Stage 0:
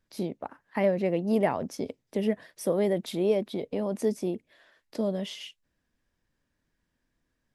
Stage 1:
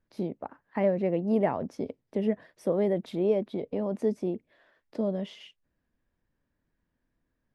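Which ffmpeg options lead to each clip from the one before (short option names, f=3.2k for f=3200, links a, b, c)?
-af "lowpass=f=1.4k:p=1"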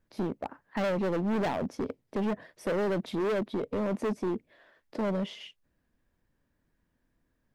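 -af "volume=30dB,asoftclip=hard,volume=-30dB,volume=3.5dB"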